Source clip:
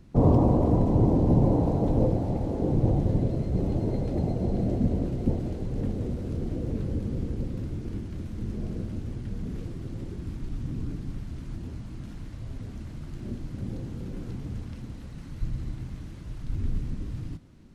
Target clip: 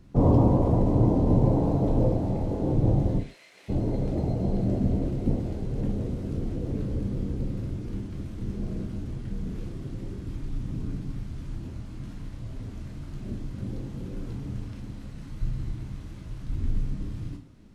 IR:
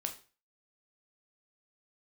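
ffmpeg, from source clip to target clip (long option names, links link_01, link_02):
-filter_complex "[0:a]asplit=3[link_01][link_02][link_03];[link_01]afade=type=out:start_time=3.18:duration=0.02[link_04];[link_02]highpass=frequency=2100:width_type=q:width=2.3,afade=type=in:start_time=3.18:duration=0.02,afade=type=out:start_time=3.68:duration=0.02[link_05];[link_03]afade=type=in:start_time=3.68:duration=0.02[link_06];[link_04][link_05][link_06]amix=inputs=3:normalize=0[link_07];[1:a]atrim=start_sample=2205,afade=type=out:start_time=0.21:duration=0.01,atrim=end_sample=9702[link_08];[link_07][link_08]afir=irnorm=-1:irlink=0"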